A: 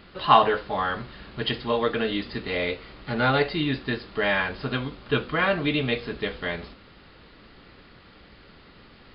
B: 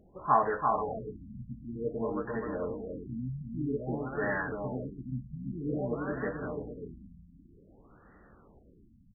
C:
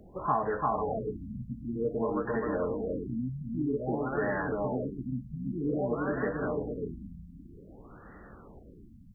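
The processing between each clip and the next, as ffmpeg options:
-af "aecho=1:1:340|595|786.2|929.7|1037:0.631|0.398|0.251|0.158|0.1,afftfilt=real='re*lt(b*sr/1024,250*pow(2000/250,0.5+0.5*sin(2*PI*0.52*pts/sr)))':imag='im*lt(b*sr/1024,250*pow(2000/250,0.5+0.5*sin(2*PI*0.52*pts/sr)))':win_size=1024:overlap=0.75,volume=-8dB"
-filter_complex "[0:a]acrossover=split=240|980[a][b][c];[a]acompressor=threshold=-46dB:ratio=4[d];[b]acompressor=threshold=-37dB:ratio=4[e];[c]acompressor=threshold=-46dB:ratio=4[f];[d][e][f]amix=inputs=3:normalize=0,volume=7.5dB"

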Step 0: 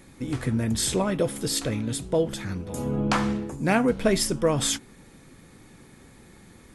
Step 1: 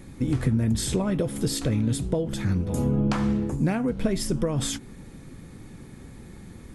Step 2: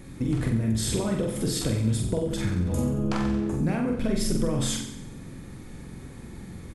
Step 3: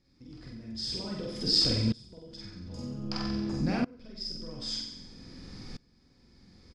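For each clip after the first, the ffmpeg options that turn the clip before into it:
-af "acompressor=threshold=-26dB:ratio=12,lowshelf=f=320:g=10.5"
-filter_complex "[0:a]acompressor=threshold=-26dB:ratio=2,asplit=2[a][b];[b]adelay=45,volume=-3dB[c];[a][c]amix=inputs=2:normalize=0,aecho=1:1:91|182|273|364|455:0.355|0.16|0.0718|0.0323|0.0145"
-filter_complex "[0:a]lowpass=f=5k:t=q:w=16,asplit=2[a][b];[b]adelay=49,volume=-4dB[c];[a][c]amix=inputs=2:normalize=0,aeval=exprs='val(0)*pow(10,-25*if(lt(mod(-0.52*n/s,1),2*abs(-0.52)/1000),1-mod(-0.52*n/s,1)/(2*abs(-0.52)/1000),(mod(-0.52*n/s,1)-2*abs(-0.52)/1000)/(1-2*abs(-0.52)/1000))/20)':c=same,volume=-2.5dB"

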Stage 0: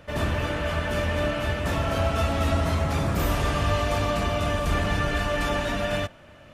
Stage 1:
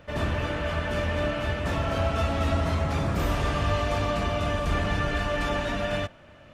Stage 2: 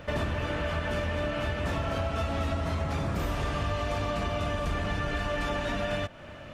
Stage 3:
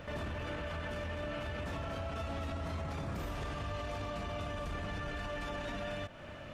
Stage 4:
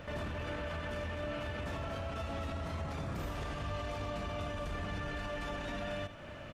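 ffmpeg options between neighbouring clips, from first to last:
-af "equalizer=f=13k:w=0.61:g=-9,volume=-1.5dB"
-af "acompressor=threshold=-34dB:ratio=6,volume=6.5dB"
-af "alimiter=level_in=4.5dB:limit=-24dB:level=0:latency=1:release=37,volume=-4.5dB,volume=-3dB"
-af "aecho=1:1:81:0.251"

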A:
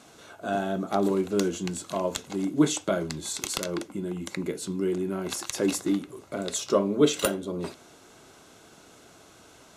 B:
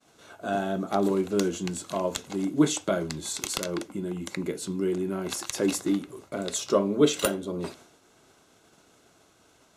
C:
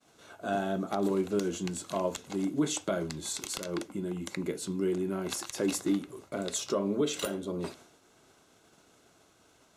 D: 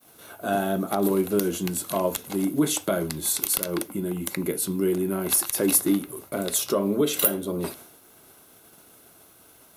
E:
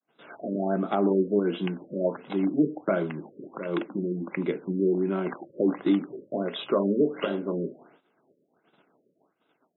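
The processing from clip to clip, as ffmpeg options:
-af "agate=range=-33dB:threshold=-46dB:ratio=3:detection=peak"
-af "alimiter=limit=-16.5dB:level=0:latency=1:release=121,volume=-2.5dB"
-af "aexciter=amount=10.6:drive=4.8:freq=10k,volume=6dB"
-af "highpass=f=160:w=0.5412,highpass=f=160:w=1.3066,agate=range=-27dB:threshold=-51dB:ratio=16:detection=peak,afftfilt=real='re*lt(b*sr/1024,580*pow(4000/580,0.5+0.5*sin(2*PI*1.4*pts/sr)))':imag='im*lt(b*sr/1024,580*pow(4000/580,0.5+0.5*sin(2*PI*1.4*pts/sr)))':win_size=1024:overlap=0.75"

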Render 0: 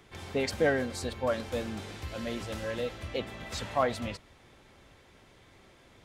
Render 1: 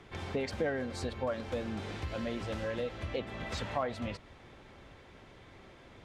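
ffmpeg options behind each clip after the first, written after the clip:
-af "aemphasis=mode=reproduction:type=50fm,acompressor=threshold=-38dB:ratio=2.5,volume=3.5dB"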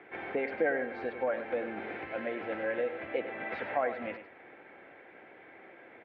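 -af "highpass=300,equalizer=f=320:t=q:w=4:g=5,equalizer=f=490:t=q:w=4:g=4,equalizer=f=750:t=q:w=4:g=6,equalizer=f=1.1k:t=q:w=4:g=-5,equalizer=f=1.6k:t=q:w=4:g=7,equalizer=f=2.2k:t=q:w=4:g=7,lowpass=f=2.5k:w=0.5412,lowpass=f=2.5k:w=1.3066,aecho=1:1:100:0.282"

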